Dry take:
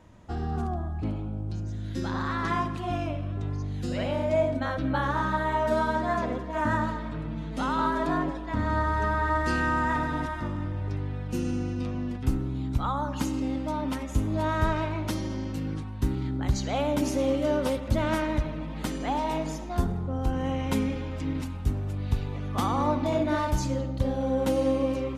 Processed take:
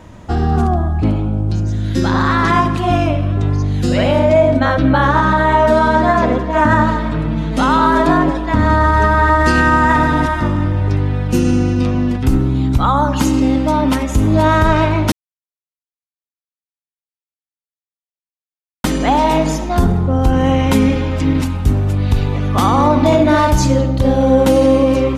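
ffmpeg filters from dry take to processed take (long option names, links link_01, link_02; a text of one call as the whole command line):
ffmpeg -i in.wav -filter_complex "[0:a]asettb=1/sr,asplit=3[link_01][link_02][link_03];[link_01]atrim=end=4.194[link_04];[link_02]atrim=start=4.19:end=6.92,asetpts=PTS-STARTPTS,afade=type=in:duration=0.004:curve=qsin,afade=type=out:start_time=2.726:duration=0.004:curve=qsin,highshelf=frequency=8300:gain=-8[link_05];[link_03]atrim=start=6.916[link_06];[link_04][link_05]acrossfade=duration=0.004:curve1=hsin:curve2=qsin[link_07];[link_07][link_06]acrossfade=duration=0.004:curve1=qsin:curve2=hsin,asplit=3[link_08][link_09][link_10];[link_08]atrim=end=15.12,asetpts=PTS-STARTPTS,afade=type=out:start_time=15.116:duration=0.004:curve=hsin[link_11];[link_09]atrim=start=15.12:end=18.84,asetpts=PTS-STARTPTS,volume=0[link_12];[link_10]atrim=start=18.84,asetpts=PTS-STARTPTS,afade=type=in:duration=0.004:curve=hsin[link_13];[link_11][link_12][link_13]concat=n=3:v=0:a=1,alimiter=level_in=17.5dB:limit=-1dB:release=50:level=0:latency=1,volume=-2dB" out.wav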